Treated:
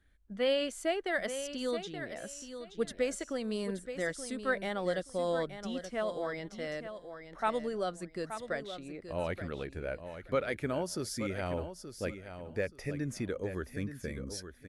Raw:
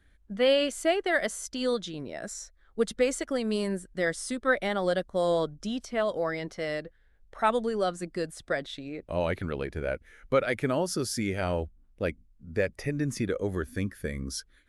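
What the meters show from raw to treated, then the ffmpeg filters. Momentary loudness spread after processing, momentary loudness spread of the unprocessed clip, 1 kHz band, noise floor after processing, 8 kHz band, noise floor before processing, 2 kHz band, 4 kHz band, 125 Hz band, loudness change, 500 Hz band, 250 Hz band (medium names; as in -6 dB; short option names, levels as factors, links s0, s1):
9 LU, 11 LU, -6.0 dB, -56 dBFS, -6.0 dB, -62 dBFS, -6.0 dB, -6.0 dB, -6.0 dB, -6.0 dB, -6.0 dB, -6.0 dB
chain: -af "aecho=1:1:876|1752|2628:0.316|0.0664|0.0139,volume=0.473"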